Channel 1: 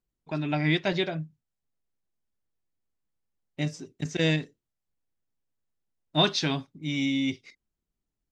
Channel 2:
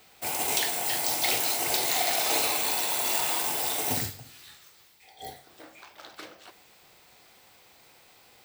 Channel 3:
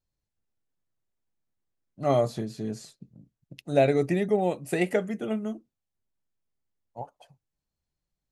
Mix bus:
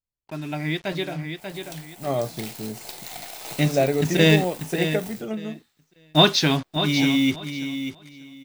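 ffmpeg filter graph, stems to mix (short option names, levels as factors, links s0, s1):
-filter_complex "[0:a]acrusher=bits=6:mix=0:aa=0.5,volume=0.75,asplit=2[s0][s1];[s1]volume=0.335[s2];[1:a]aeval=exprs='0.376*(cos(1*acos(clip(val(0)/0.376,-1,1)))-cos(1*PI/2))+0.0237*(cos(4*acos(clip(val(0)/0.376,-1,1)))-cos(4*PI/2))+0.0376*(cos(7*acos(clip(val(0)/0.376,-1,1)))-cos(7*PI/2))':c=same,adelay=1150,volume=0.133[s3];[2:a]volume=0.299[s4];[s2]aecho=0:1:589|1178|1767:1|0.19|0.0361[s5];[s0][s3][s4][s5]amix=inputs=4:normalize=0,dynaudnorm=f=770:g=5:m=3.76"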